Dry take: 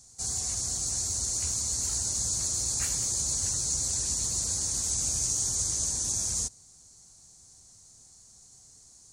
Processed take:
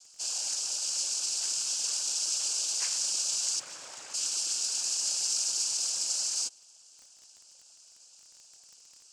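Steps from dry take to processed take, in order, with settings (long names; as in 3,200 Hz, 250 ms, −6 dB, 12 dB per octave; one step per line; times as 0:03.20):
0:03.59–0:04.14: running median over 15 samples
high-pass filter 670 Hz 12 dB per octave
cochlear-implant simulation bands 8
surface crackle 20 per second −43 dBFS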